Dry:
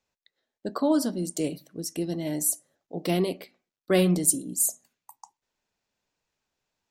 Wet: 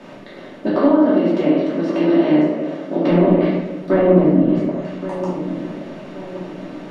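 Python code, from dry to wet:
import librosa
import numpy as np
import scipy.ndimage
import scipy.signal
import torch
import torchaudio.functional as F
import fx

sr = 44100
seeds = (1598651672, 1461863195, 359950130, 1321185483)

y = fx.bin_compress(x, sr, power=0.4)
y = fx.highpass(y, sr, hz=240.0, slope=12, at=(0.66, 3.05), fade=0.02)
y = fx.env_lowpass_down(y, sr, base_hz=1200.0, full_db=-15.5)
y = fx.air_absorb(y, sr, metres=270.0)
y = fx.echo_filtered(y, sr, ms=1124, feedback_pct=43, hz=2200.0, wet_db=-11.5)
y = fx.room_shoebox(y, sr, seeds[0], volume_m3=220.0, walls='mixed', distance_m=2.7)
y = y * 10.0 ** (-1.0 / 20.0)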